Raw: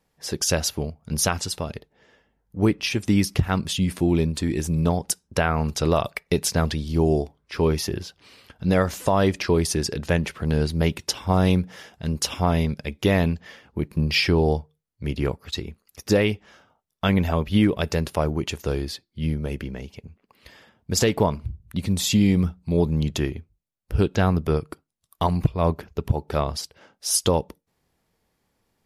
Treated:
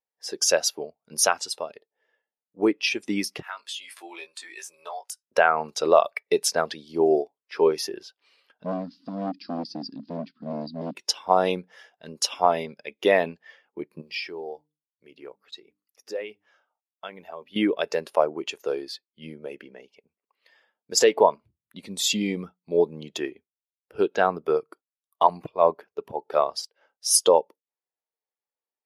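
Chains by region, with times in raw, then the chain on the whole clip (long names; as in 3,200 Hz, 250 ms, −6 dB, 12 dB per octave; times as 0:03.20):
0:03.42–0:05.23: high-pass filter 940 Hz + double-tracking delay 18 ms −4 dB + downward compressor 4 to 1, threshold −29 dBFS
0:08.64–0:10.95: one scale factor per block 5 bits + drawn EQ curve 100 Hz 0 dB, 270 Hz +12 dB, 480 Hz −28 dB, 1,200 Hz −15 dB, 2,200 Hz −17 dB, 4,800 Hz −3 dB, 7,000 Hz −29 dB + hard clipping −18.5 dBFS
0:14.01–0:17.56: mains-hum notches 50/100/150/200/250/300 Hz + downward compressor 1.5 to 1, threshold −46 dBFS + noise that follows the level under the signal 35 dB
whole clip: high-pass filter 480 Hz 12 dB per octave; every bin expanded away from the loudest bin 1.5 to 1; level +4 dB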